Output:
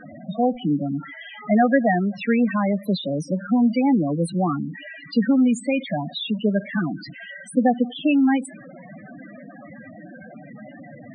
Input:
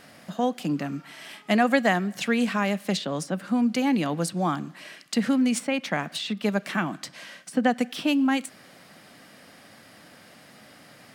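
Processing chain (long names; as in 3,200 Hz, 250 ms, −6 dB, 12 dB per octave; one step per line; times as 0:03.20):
converter with a step at zero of −33.5 dBFS
spectral peaks only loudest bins 8
level +4 dB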